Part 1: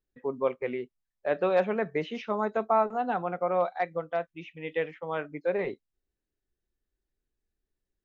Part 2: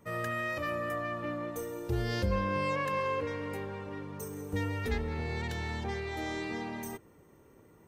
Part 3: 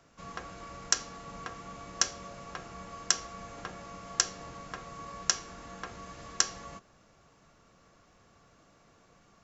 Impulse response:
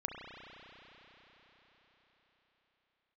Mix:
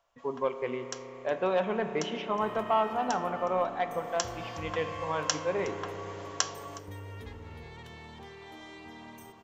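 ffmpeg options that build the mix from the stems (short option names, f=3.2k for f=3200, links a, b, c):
-filter_complex "[0:a]asoftclip=type=tanh:threshold=-15.5dB,volume=-6dB,asplit=2[a][b];[b]volume=-3.5dB[c];[1:a]acompressor=threshold=-46dB:ratio=2,adelay=2350,volume=-5dB,asplit=2[d][e];[e]volume=-7.5dB[f];[2:a]lowshelf=f=430:t=q:w=3:g=-13,volume=-3.5dB,afade=t=in:st=3.93:d=0.61:silence=0.266073,asplit=2[g][h];[h]volume=-21dB[i];[3:a]atrim=start_sample=2205[j];[c][j]afir=irnorm=-1:irlink=0[k];[f][i]amix=inputs=2:normalize=0,aecho=0:1:365:1[l];[a][d][g][k][l]amix=inputs=5:normalize=0,equalizer=f=100:t=o:w=0.33:g=7,equalizer=f=1k:t=o:w=0.33:g=7,equalizer=f=3.15k:t=o:w=0.33:g=8"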